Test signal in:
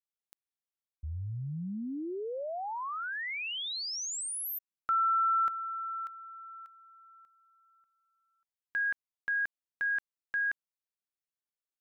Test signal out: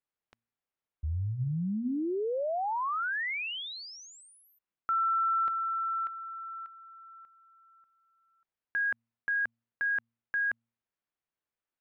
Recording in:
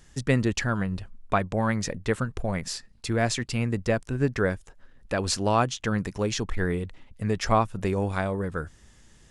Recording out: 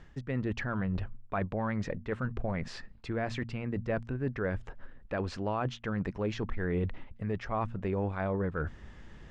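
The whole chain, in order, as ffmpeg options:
-af "areverse,acompressor=threshold=-32dB:ratio=6:attack=0.51:release=444:knee=6:detection=peak,areverse,lowpass=2.3k,bandreject=f=115.5:t=h:w=4,bandreject=f=231:t=h:w=4,volume=6.5dB"

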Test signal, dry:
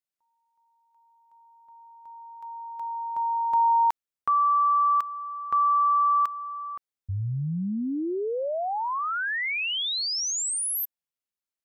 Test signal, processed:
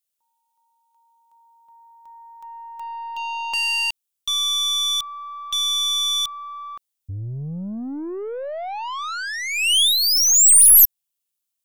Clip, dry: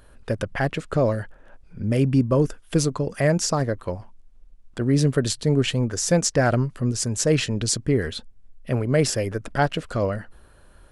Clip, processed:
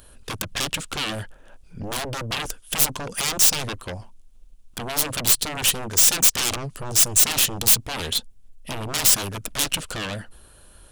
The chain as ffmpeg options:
-af "aeval=exprs='0.473*sin(PI/2*8.91*val(0)/0.473)':c=same,aexciter=amount=3.2:drive=2.4:freq=2.7k,aeval=exprs='3.35*(cos(1*acos(clip(val(0)/3.35,-1,1)))-cos(1*PI/2))+0.531*(cos(2*acos(clip(val(0)/3.35,-1,1)))-cos(2*PI/2))+0.299*(cos(7*acos(clip(val(0)/3.35,-1,1)))-cos(7*PI/2))':c=same,volume=-14dB"

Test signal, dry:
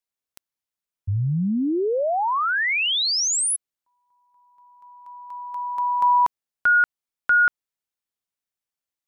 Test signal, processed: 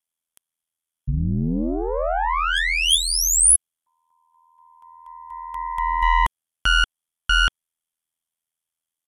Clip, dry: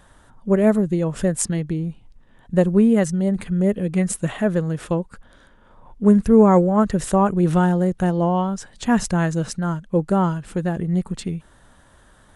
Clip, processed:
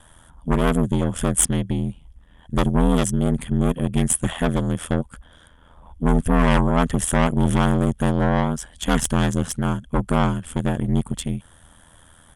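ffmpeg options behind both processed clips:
-af "aeval=exprs='0.708*(cos(1*acos(clip(val(0)/0.708,-1,1)))-cos(1*PI/2))+0.316*(cos(4*acos(clip(val(0)/0.708,-1,1)))-cos(4*PI/2))':c=same,equalizer=f=3.3k:w=6.5:g=15,aresample=32000,aresample=44100,asoftclip=type=tanh:threshold=-10dB,aeval=exprs='val(0)*sin(2*PI*41*n/s)':c=same,equalizer=f=400:t=o:w=0.67:g=-5,equalizer=f=4k:t=o:w=0.67:g=-8,equalizer=f=10k:t=o:w=0.67:g=10,volume=3.5dB"

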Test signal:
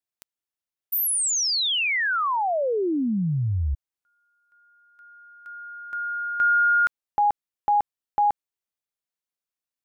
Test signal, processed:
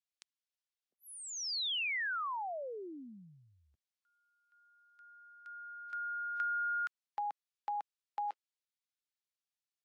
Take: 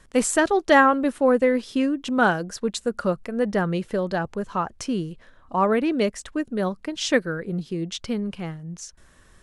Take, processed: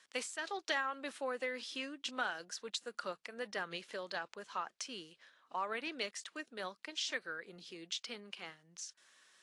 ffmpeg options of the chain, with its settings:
-filter_complex "[0:a]aderivative,acompressor=threshold=-40dB:ratio=4:attack=26:release=292:knee=6:detection=peak,acrossover=split=170 5300:gain=0.178 1 0.1[a][b][c];[a][b][c]amix=inputs=3:normalize=0,volume=5dB" -ar 24000 -c:a aac -b:a 48k

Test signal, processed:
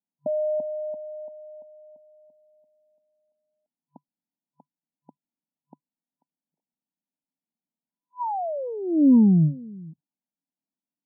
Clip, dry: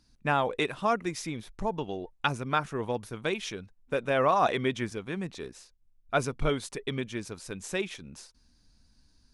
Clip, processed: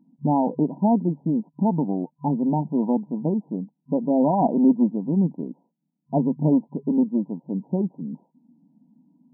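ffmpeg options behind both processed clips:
-af "lowshelf=f=330:t=q:w=3:g=7,aeval=exprs='0.355*(cos(1*acos(clip(val(0)/0.355,-1,1)))-cos(1*PI/2))+0.0126*(cos(8*acos(clip(val(0)/0.355,-1,1)))-cos(8*PI/2))':c=same,afftfilt=real='re*between(b*sr/4096,150,1000)':imag='im*between(b*sr/4096,150,1000)':win_size=4096:overlap=0.75,volume=5.5dB"

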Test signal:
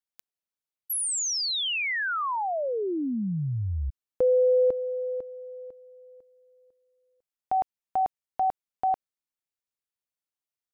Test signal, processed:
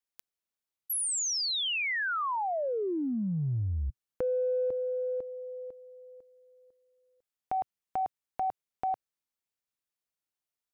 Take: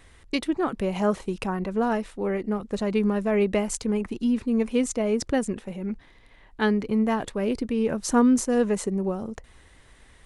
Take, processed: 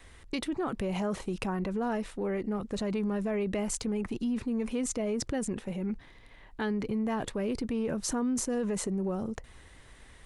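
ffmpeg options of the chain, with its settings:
-af "adynamicequalizer=threshold=0.00631:dfrequency=120:dqfactor=2.1:tfrequency=120:tqfactor=2.1:attack=5:release=100:ratio=0.375:range=2:mode=boostabove:tftype=bell,acompressor=threshold=-28dB:ratio=6:attack=2.1:release=36:knee=6:detection=peak"

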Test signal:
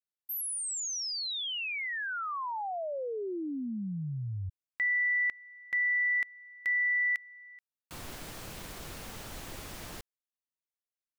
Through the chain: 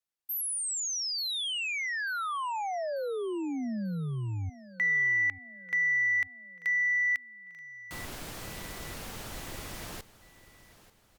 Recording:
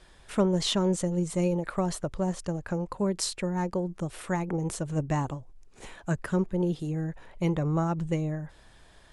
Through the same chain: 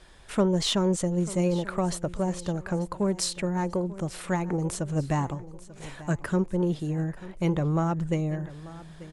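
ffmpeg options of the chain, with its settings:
-filter_complex "[0:a]asplit=2[a][b];[b]asoftclip=type=tanh:threshold=-27.5dB,volume=-10dB[c];[a][c]amix=inputs=2:normalize=0,aecho=1:1:890|1780|2670|3560:0.133|0.06|0.027|0.0122" -ar 48000 -c:a libopus -b:a 256k

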